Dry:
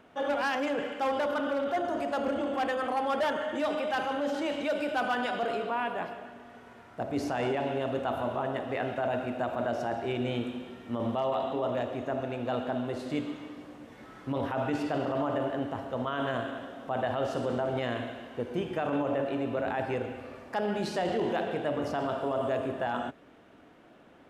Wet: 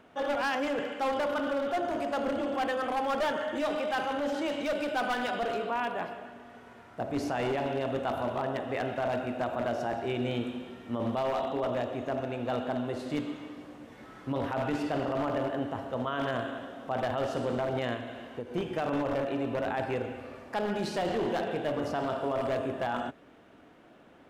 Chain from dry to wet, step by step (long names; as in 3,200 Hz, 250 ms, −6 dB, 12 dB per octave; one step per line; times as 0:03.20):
wavefolder on the positive side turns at −25.5 dBFS
0:17.94–0:18.55: downward compressor, threshold −34 dBFS, peak gain reduction 7 dB